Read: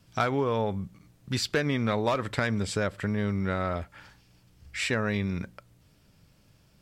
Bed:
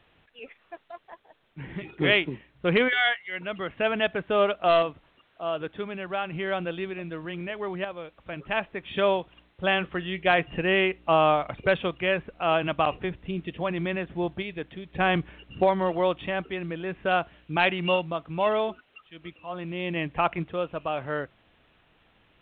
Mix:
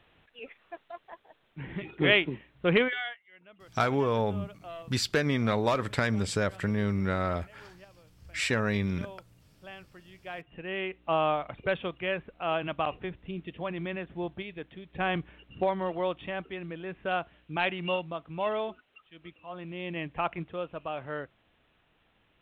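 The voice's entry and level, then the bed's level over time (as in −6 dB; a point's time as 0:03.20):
3.60 s, 0.0 dB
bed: 0:02.77 −1 dB
0:03.27 −22 dB
0:10.13 −22 dB
0:11.10 −6 dB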